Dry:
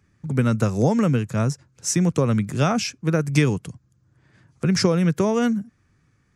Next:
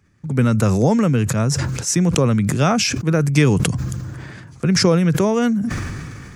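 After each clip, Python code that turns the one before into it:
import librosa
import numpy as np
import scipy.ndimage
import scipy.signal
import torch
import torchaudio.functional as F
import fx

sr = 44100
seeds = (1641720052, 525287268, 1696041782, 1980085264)

y = fx.sustainer(x, sr, db_per_s=26.0)
y = y * librosa.db_to_amplitude(2.5)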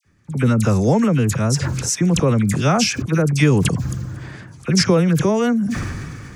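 y = fx.dispersion(x, sr, late='lows', ms=51.0, hz=1800.0)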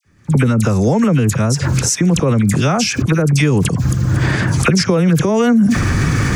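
y = fx.recorder_agc(x, sr, target_db=-6.5, rise_db_per_s=43.0, max_gain_db=30)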